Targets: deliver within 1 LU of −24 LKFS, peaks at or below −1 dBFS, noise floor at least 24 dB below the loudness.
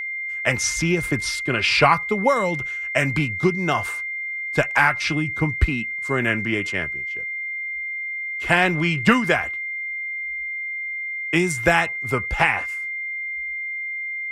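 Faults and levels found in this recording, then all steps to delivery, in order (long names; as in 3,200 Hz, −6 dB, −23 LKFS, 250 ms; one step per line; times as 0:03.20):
interfering tone 2,100 Hz; level of the tone −26 dBFS; integrated loudness −22.0 LKFS; sample peak −3.0 dBFS; target loudness −24.0 LKFS
→ notch filter 2,100 Hz, Q 30
level −2 dB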